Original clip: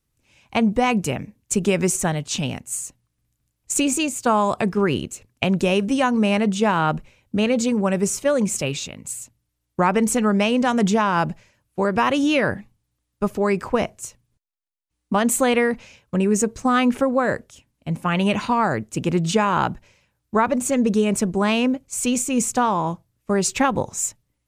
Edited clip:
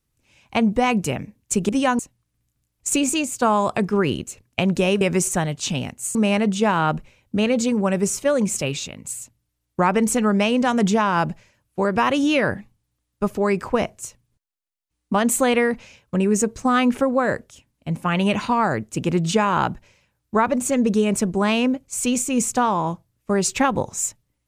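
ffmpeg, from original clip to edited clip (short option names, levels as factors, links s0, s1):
-filter_complex "[0:a]asplit=5[s0][s1][s2][s3][s4];[s0]atrim=end=1.692[s5];[s1]atrim=start=5.848:end=6.152[s6];[s2]atrim=start=2.828:end=5.852[s7];[s3]atrim=start=1.688:end=2.832[s8];[s4]atrim=start=6.148[s9];[s5][s6]acrossfade=d=0.004:c1=hsin:c2=hsin[s10];[s10][s7]acrossfade=d=0.004:c1=hsin:c2=hsin[s11];[s11][s8]acrossfade=d=0.004:c1=hsin:c2=hsin[s12];[s12][s9]acrossfade=d=0.004:c1=hsin:c2=hsin"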